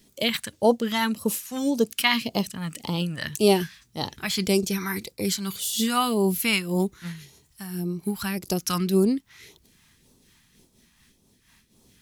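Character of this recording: phasing stages 2, 1.8 Hz, lowest notch 420–1800 Hz; a quantiser's noise floor 12-bit, dither triangular; noise-modulated level

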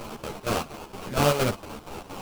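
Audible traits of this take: a quantiser's noise floor 6-bit, dither triangular; chopped level 4.3 Hz, depth 65%, duty 65%; aliases and images of a low sample rate 1900 Hz, jitter 20%; a shimmering, thickened sound

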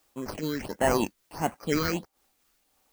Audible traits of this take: aliases and images of a low sample rate 3600 Hz, jitter 0%; phasing stages 6, 1.5 Hz, lowest notch 710–4700 Hz; a quantiser's noise floor 12-bit, dither triangular; noise-modulated level

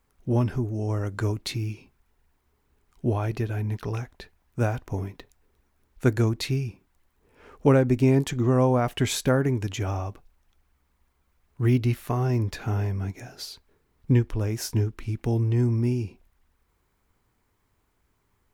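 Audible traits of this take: noise floor -71 dBFS; spectral tilt -7.0 dB/oct

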